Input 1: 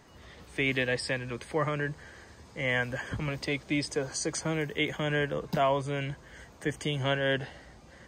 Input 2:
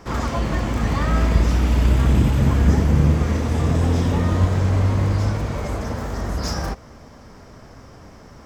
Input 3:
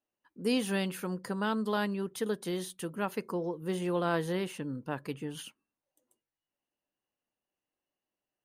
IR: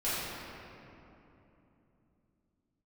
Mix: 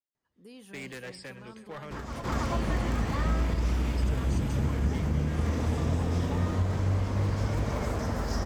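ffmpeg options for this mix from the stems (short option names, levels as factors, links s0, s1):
-filter_complex "[0:a]aeval=exprs='0.0708*(abs(mod(val(0)/0.0708+3,4)-2)-1)':c=same,adelay=150,volume=0.266,asplit=2[s0][s1];[s1]volume=0.119[s2];[1:a]acompressor=threshold=0.1:ratio=6,adelay=1850,volume=0.891,asplit=2[s3][s4];[s4]volume=0.668[s5];[2:a]alimiter=level_in=1.12:limit=0.0631:level=0:latency=1,volume=0.891,volume=0.158,asplit=3[s6][s7][s8];[s7]volume=0.422[s9];[s8]apad=whole_len=454560[s10];[s3][s10]sidechaincompress=threshold=0.00141:ratio=8:attack=16:release=234[s11];[s0][s11]amix=inputs=2:normalize=0,agate=range=0.1:threshold=0.00178:ratio=16:detection=peak,alimiter=level_in=1.68:limit=0.0631:level=0:latency=1:release=283,volume=0.596,volume=1[s12];[s2][s5][s9]amix=inputs=3:normalize=0,aecho=0:1:329:1[s13];[s6][s12][s13]amix=inputs=3:normalize=0"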